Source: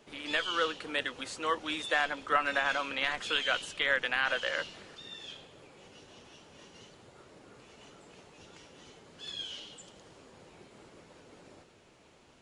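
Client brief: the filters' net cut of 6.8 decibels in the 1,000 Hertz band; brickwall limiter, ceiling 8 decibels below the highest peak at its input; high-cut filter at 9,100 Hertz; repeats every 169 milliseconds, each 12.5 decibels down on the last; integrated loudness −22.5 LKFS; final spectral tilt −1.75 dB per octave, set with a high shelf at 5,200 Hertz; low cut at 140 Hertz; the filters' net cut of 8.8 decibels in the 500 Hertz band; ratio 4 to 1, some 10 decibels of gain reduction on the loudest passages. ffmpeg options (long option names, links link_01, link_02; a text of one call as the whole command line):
ffmpeg -i in.wav -af "highpass=140,lowpass=9100,equalizer=frequency=500:width_type=o:gain=-8,equalizer=frequency=1000:width_type=o:gain=-7.5,highshelf=frequency=5200:gain=-4.5,acompressor=threshold=-40dB:ratio=4,alimiter=level_in=9dB:limit=-24dB:level=0:latency=1,volume=-9dB,aecho=1:1:169|338|507:0.237|0.0569|0.0137,volume=22.5dB" out.wav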